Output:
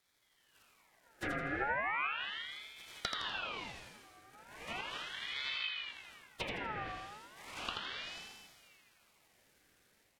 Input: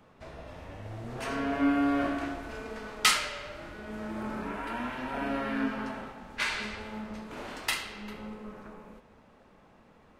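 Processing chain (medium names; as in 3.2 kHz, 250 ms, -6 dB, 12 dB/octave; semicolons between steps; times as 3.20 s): zero-crossing glitches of -18.5 dBFS; gate -26 dBFS, range -28 dB; treble shelf 2.5 kHz -10 dB; Schroeder reverb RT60 1.7 s, combs from 30 ms, DRR 7 dB; compression 16:1, threshold -32 dBFS, peak gain reduction 11 dB; rippled Chebyshev high-pass 150 Hz, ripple 6 dB; low-pass that closes with the level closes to 890 Hz, closed at -37 dBFS; level rider gain up to 6.5 dB; dynamic bell 940 Hz, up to +5 dB, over -50 dBFS, Q 1.1; on a send: feedback delay 82 ms, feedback 41%, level -4.5 dB; on the sum: ring modulator with a swept carrier 1.9 kHz, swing 50%, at 0.36 Hz; trim -1.5 dB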